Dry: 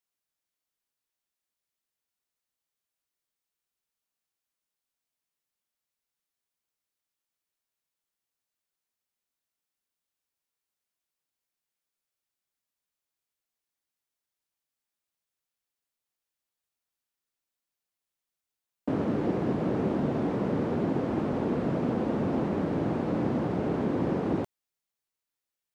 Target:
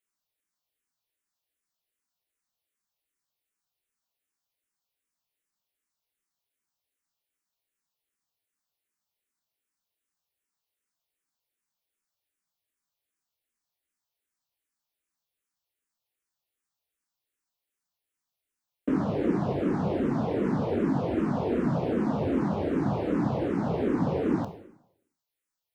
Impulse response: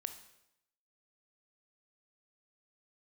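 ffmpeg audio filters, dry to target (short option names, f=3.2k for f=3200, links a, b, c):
-filter_complex "[1:a]atrim=start_sample=2205[a];[0:a][a]afir=irnorm=-1:irlink=0,asplit=2[b][c];[c]afreqshift=-2.6[d];[b][d]amix=inputs=2:normalize=1,volume=6.5dB"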